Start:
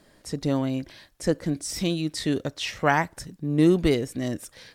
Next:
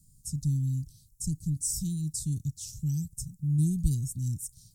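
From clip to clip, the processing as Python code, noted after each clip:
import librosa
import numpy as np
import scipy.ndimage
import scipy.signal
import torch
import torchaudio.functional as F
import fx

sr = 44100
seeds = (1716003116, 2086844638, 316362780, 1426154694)

y = scipy.signal.sosfilt(scipy.signal.ellip(3, 1.0, 60, [140.0, 7200.0], 'bandstop', fs=sr, output='sos'), x)
y = y * 10.0 ** (5.0 / 20.0)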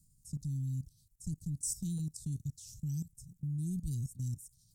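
y = fx.level_steps(x, sr, step_db=16)
y = y * 10.0 ** (-3.0 / 20.0)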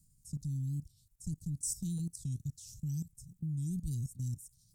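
y = fx.record_warp(x, sr, rpm=45.0, depth_cents=160.0)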